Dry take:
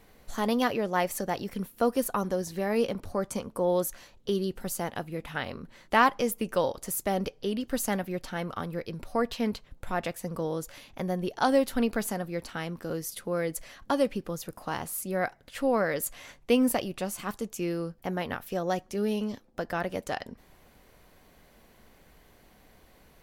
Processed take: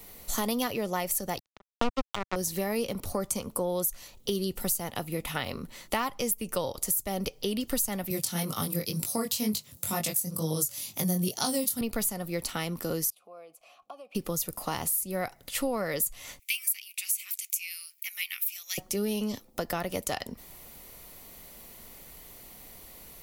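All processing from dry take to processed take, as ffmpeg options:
-filter_complex "[0:a]asettb=1/sr,asplit=3[s0][s1][s2];[s0]atrim=end=1.394[s3];[s1]atrim=start=1.39:end=2.36,asetpts=PTS-STARTPTS,afade=t=in:d=0.004:c=qsin,afade=t=out:st=0.966:d=0.004:c=qsin,lowpass=f=4300:w=0.5412,lowpass=f=4300:w=1.3066,tiltshelf=f=1300:g=4,acrusher=bits=2:mix=0:aa=0.5[s4];[s2]atrim=start=2.356[s5];[s3][s4]acrossfade=d=0.004:c1=hsin:c2=qsin[s6];[s6][s5]acrossfade=d=0.004:c1=qsin:c2=hsin,asettb=1/sr,asplit=3[s7][s8][s9];[s7]atrim=end=8.104[s10];[s8]atrim=start=8.1:end=11.81,asetpts=PTS-STARTPTS,afade=t=in:d=0.004:c=qsin,afade=t=out:st=3.706:d=0.004:c=qsin,highpass=f=110:w=0.5412,highpass=f=110:w=1.3066,bass=f=250:g=9,treble=f=4000:g=15,flanger=delay=18.5:depth=4.7:speed=2.1[s11];[s9]atrim=start=11.806[s12];[s10][s11]acrossfade=d=0.004:c1=hsin:c2=qsin[s13];[s13][s12]acrossfade=d=0.004:c1=qsin:c2=hsin,asettb=1/sr,asplit=3[s14][s15][s16];[s14]atrim=end=13.104[s17];[s15]atrim=start=13.1:end=14.15,asetpts=PTS-STARTPTS,afade=t=in:d=0.004:c=qsin,afade=t=out:st=1.046:d=0.004:c=qsin,highshelf=f=9700:g=9.5,acompressor=threshold=0.0178:ratio=5:attack=3.2:release=140:knee=1:detection=peak,asplit=3[s18][s19][s20];[s18]bandpass=f=730:t=q:w=8,volume=1[s21];[s19]bandpass=f=1090:t=q:w=8,volume=0.501[s22];[s20]bandpass=f=2440:t=q:w=8,volume=0.355[s23];[s21][s22][s23]amix=inputs=3:normalize=0[s24];[s16]atrim=start=14.146[s25];[s17][s24]acrossfade=d=0.004:c1=hsin:c2=qsin[s26];[s26][s25]acrossfade=d=0.004:c1=qsin:c2=hsin,asettb=1/sr,asplit=3[s27][s28][s29];[s27]atrim=end=16.394[s30];[s28]atrim=start=16.39:end=18.78,asetpts=PTS-STARTPTS,afade=t=in:d=0.004:c=qsin,afade=t=out:st=2.386:d=0.004:c=qsin,highpass=f=2300:t=q:w=6.7,aderivative[s31];[s29]atrim=start=18.776[s32];[s30][s31]acrossfade=d=0.004:c1=hsin:c2=qsin[s33];[s33][s32]acrossfade=d=0.004:c1=qsin:c2=hsin,aemphasis=mode=production:type=75kf,bandreject=f=1600:w=6.5,acrossover=split=130[s34][s35];[s35]acompressor=threshold=0.0282:ratio=5[s36];[s34][s36]amix=inputs=2:normalize=0,volume=1.5"

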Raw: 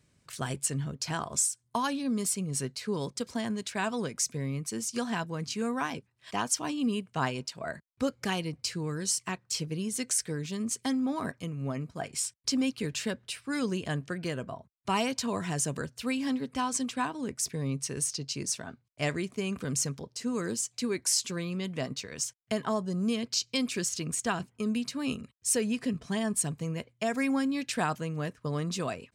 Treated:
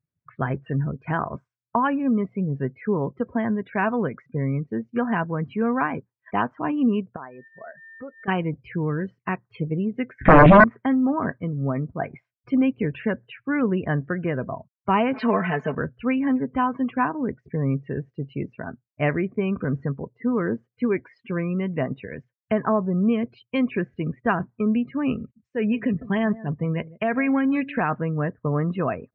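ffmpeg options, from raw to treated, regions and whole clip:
-filter_complex "[0:a]asettb=1/sr,asplit=3[s0][s1][s2];[s0]atrim=end=7.164[s3];[s1]atrim=start=7.16:end=8.28,asetpts=PTS-STARTPTS,afade=t=in:d=0.004:c=qsin,afade=t=out:st=1.116:d=0.004:c=qsin,aeval=exprs='val(0)+0.00316*sin(2*PI*1800*n/s)':c=same,bass=f=250:g=-11,treble=f=4000:g=-2,acompressor=threshold=0.00355:ratio=2.5:attack=3.2:release=140:knee=1:detection=peak[s4];[s2]atrim=start=8.276[s5];[s3][s4]acrossfade=d=0.004:c1=hsin:c2=qsin[s6];[s6][s5]acrossfade=d=0.004:c1=qsin:c2=hsin,asettb=1/sr,asplit=3[s7][s8][s9];[s7]atrim=end=10.214[s10];[s8]atrim=start=10.21:end=10.64,asetpts=PTS-STARTPTS,afade=t=in:d=0.004:c=qsin,afade=t=out:st=0.426:d=0.004:c=qsin,lowshelf=f=380:t=q:w=3:g=8.5,bandreject=f=60:t=h:w=6,bandreject=f=120:t=h:w=6,bandreject=f=180:t=h:w=6,bandreject=f=240:t=h:w=6,bandreject=f=300:t=h:w=6,bandreject=f=360:t=h:w=6,bandreject=f=420:t=h:w=6,bandreject=f=480:t=h:w=6,bandreject=f=540:t=h:w=6,aeval=exprs='0.178*sin(PI/2*5.62*val(0)/0.178)':c=same[s11];[s9]atrim=start=10.636[s12];[s10][s11]acrossfade=d=0.004:c1=hsin:c2=qsin[s13];[s13][s12]acrossfade=d=0.004:c1=qsin:c2=hsin,asettb=1/sr,asplit=3[s14][s15][s16];[s14]atrim=end=15.134[s17];[s15]atrim=start=15.13:end=15.75,asetpts=PTS-STARTPTS,afade=t=in:d=0.004:c=qsin,afade=t=out:st=0.616:d=0.004:c=qsin,aeval=exprs='val(0)+0.5*0.0119*sgn(val(0))':c=same,aemphasis=mode=production:type=bsi,aecho=1:1:4.6:0.9,atrim=end_sample=27342[s18];[s16]atrim=start=15.746[s19];[s17][s18]acrossfade=d=0.004:c1=hsin:c2=qsin[s20];[s20][s19]acrossfade=d=0.004:c1=qsin:c2=hsin,asettb=1/sr,asplit=3[s21][s22][s23];[s21]atrim=end=25.204[s24];[s22]atrim=start=25.2:end=27.94,asetpts=PTS-STARTPTS,afade=t=in:d=0.004:c=qsin,afade=t=out:st=2.736:d=0.004:c=qsin,equalizer=f=8000:w=0.42:g=12,acompressor=threshold=0.0562:ratio=5:attack=3.2:release=140:knee=1:detection=peak,aecho=1:1:155:0.126,atrim=end_sample=120834[s25];[s23]atrim=start=27.936[s26];[s24][s25]acrossfade=d=0.004:c1=hsin:c2=qsin[s27];[s27][s26]acrossfade=d=0.004:c1=qsin:c2=hsin,lowpass=f=2200:w=0.5412,lowpass=f=2200:w=1.3066,afftdn=nr=32:nf=-47,acontrast=28,volume=1.5"

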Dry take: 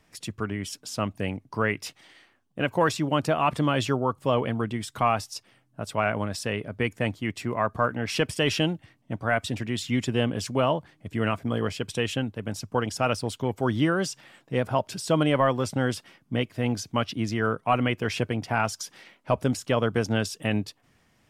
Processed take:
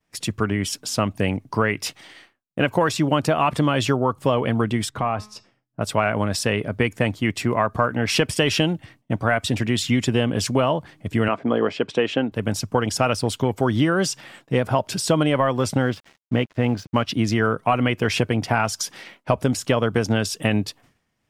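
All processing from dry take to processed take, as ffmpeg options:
-filter_complex "[0:a]asettb=1/sr,asplit=3[s0][s1][s2];[s0]atrim=end=4.894[s3];[s1]atrim=start=4.89:end=5.81,asetpts=PTS-STARTPTS,afade=t=in:d=0.004:c=qsin,afade=t=out:st=0.916:d=0.004:c=qsin,lowpass=f=1300:p=1,acompressor=threshold=0.0251:ratio=2:attack=3.2:release=140:knee=1:detection=peak,bandreject=f=212:t=h:w=4,bandreject=f=424:t=h:w=4,bandreject=f=636:t=h:w=4,bandreject=f=848:t=h:w=4,bandreject=f=1060:t=h:w=4,bandreject=f=1272:t=h:w=4,bandreject=f=1484:t=h:w=4,bandreject=f=1696:t=h:w=4,bandreject=f=1908:t=h:w=4,bandreject=f=2120:t=h:w=4,bandreject=f=2332:t=h:w=4,bandreject=f=2544:t=h:w=4,bandreject=f=2756:t=h:w=4,bandreject=f=2968:t=h:w=4,bandreject=f=3180:t=h:w=4,bandreject=f=3392:t=h:w=4,bandreject=f=3604:t=h:w=4,bandreject=f=3816:t=h:w=4,bandreject=f=4028:t=h:w=4,bandreject=f=4240:t=h:w=4,bandreject=f=4452:t=h:w=4,bandreject=f=4664:t=h:w=4,bandreject=f=4876:t=h:w=4,bandreject=f=5088:t=h:w=4,bandreject=f=5300:t=h:w=4,bandreject=f=5512:t=h:w=4,bandreject=f=5724:t=h:w=4,bandreject=f=5936:t=h:w=4,bandreject=f=6148:t=h:w=4,bandreject=f=6360:t=h:w=4,bandreject=f=6572:t=h:w=4,bandreject=f=6784:t=h:w=4,bandreject=f=6996:t=h:w=4,bandreject=f=7208:t=h:w=4,bandreject=f=7420:t=h:w=4,bandreject=f=7632:t=h:w=4,bandreject=f=7844:t=h:w=4[s4];[s2]atrim=start=5.806[s5];[s3][s4]acrossfade=d=0.004:c1=hsin:c2=qsin[s6];[s6][s5]acrossfade=d=0.004:c1=qsin:c2=hsin,asettb=1/sr,asplit=3[s7][s8][s9];[s7]atrim=end=11.284[s10];[s8]atrim=start=11.28:end=12.32,asetpts=PTS-STARTPTS,afade=t=in:d=0.004:c=qsin,afade=t=out:st=1.036:d=0.004:c=qsin,highpass=290,lowpass=3900,tiltshelf=f=1300:g=4[s11];[s9]atrim=start=12.316[s12];[s10][s11]acrossfade=d=0.004:c1=hsin:c2=qsin[s13];[s13][s12]acrossfade=d=0.004:c1=qsin:c2=hsin,asettb=1/sr,asplit=3[s14][s15][s16];[s14]atrim=end=15.824[s17];[s15]atrim=start=15.82:end=17.07,asetpts=PTS-STARTPTS,afade=t=in:d=0.004:c=qsin,afade=t=out:st=1.246:d=0.004:c=qsin,lowpass=3000,aeval=exprs='sgn(val(0))*max(abs(val(0))-0.00237,0)':c=same[s18];[s16]atrim=start=17.066[s19];[s17][s18]acrossfade=d=0.004:c1=hsin:c2=qsin[s20];[s20][s19]acrossfade=d=0.004:c1=qsin:c2=hsin,agate=range=0.0224:threshold=0.00251:ratio=3:detection=peak,acompressor=threshold=0.0631:ratio=6,volume=2.82"

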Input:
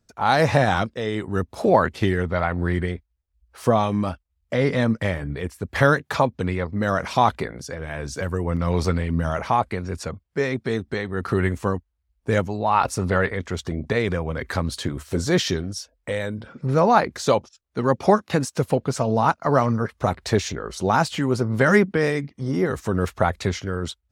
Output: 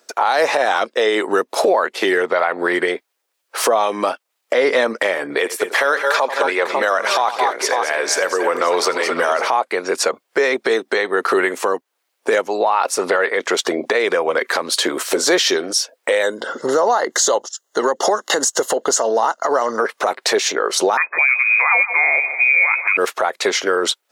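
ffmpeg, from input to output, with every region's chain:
-filter_complex "[0:a]asettb=1/sr,asplit=3[s0][s1][s2];[s0]atrim=end=5.384[s3];[s1]atrim=start=5.38:end=9.48,asetpts=PTS-STARTPTS,afade=t=in:d=0.004:c=qsin,afade=t=out:st=4.096:d=0.004:c=qsin,highpass=f=430:p=1,aecho=1:1:85|215|220|547:0.141|0.237|0.224|0.178,atrim=end_sample=180810[s4];[s2]atrim=start=9.476[s5];[s3][s4]acrossfade=d=0.004:c1=hsin:c2=qsin[s6];[s6][s5]acrossfade=d=0.004:c1=qsin:c2=hsin,asettb=1/sr,asplit=3[s7][s8][s9];[s7]atrim=end=16.234[s10];[s8]atrim=start=16.23:end=19.79,asetpts=PTS-STARTPTS,afade=t=in:d=0.004:c=qsin,afade=t=out:st=3.556:d=0.004:c=qsin,acompressor=threshold=0.1:ratio=6:attack=3.2:release=140:knee=1:detection=peak,asuperstop=centerf=2400:order=12:qfactor=4.1,equalizer=f=6800:t=o:w=0.28:g=12.5[s11];[s9]atrim=start=19.786[s12];[s10][s11]acrossfade=d=0.004:c1=hsin:c2=qsin[s13];[s13][s12]acrossfade=d=0.004:c1=qsin:c2=hsin,asettb=1/sr,asplit=3[s14][s15][s16];[s14]atrim=end=20.974[s17];[s15]atrim=start=20.97:end=22.97,asetpts=PTS-STARTPTS,afade=t=in:d=0.004:c=qsin,afade=t=out:st=1.996:d=0.004:c=qsin,aecho=1:1:154|308|462|616:0.141|0.0622|0.0273|0.012,atrim=end_sample=88200,lowpass=f=2200:t=q:w=0.5098,lowpass=f=2200:t=q:w=0.6013,lowpass=f=2200:t=q:w=0.9,lowpass=f=2200:t=q:w=2.563,afreqshift=-2600[s18];[s16]atrim=start=22.966[s19];[s17][s18]acrossfade=d=0.004:c1=hsin:c2=qsin[s20];[s20][s19]acrossfade=d=0.004:c1=qsin:c2=hsin,highpass=f=390:w=0.5412,highpass=f=390:w=1.3066,acompressor=threshold=0.0158:ratio=3,alimiter=level_in=18.8:limit=0.891:release=50:level=0:latency=1,volume=0.562"

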